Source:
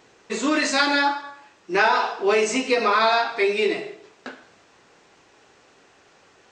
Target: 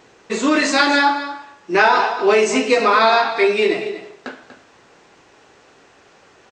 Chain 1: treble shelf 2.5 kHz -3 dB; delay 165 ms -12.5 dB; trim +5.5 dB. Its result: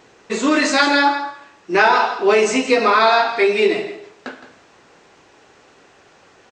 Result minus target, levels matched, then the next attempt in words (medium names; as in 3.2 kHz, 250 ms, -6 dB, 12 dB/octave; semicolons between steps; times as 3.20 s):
echo 75 ms early
treble shelf 2.5 kHz -3 dB; delay 240 ms -12.5 dB; trim +5.5 dB